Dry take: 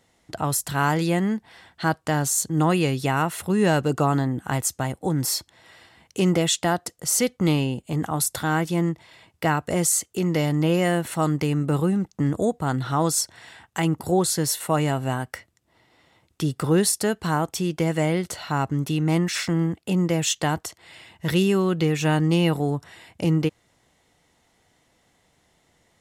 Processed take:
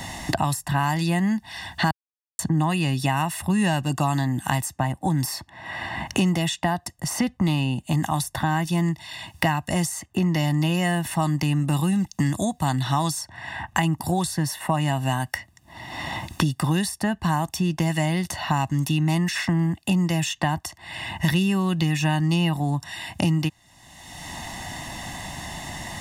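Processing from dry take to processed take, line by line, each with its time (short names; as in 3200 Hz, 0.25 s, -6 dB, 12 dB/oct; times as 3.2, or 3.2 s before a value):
1.91–2.39 mute
whole clip: comb 1.1 ms, depth 86%; three-band squash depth 100%; gain -3 dB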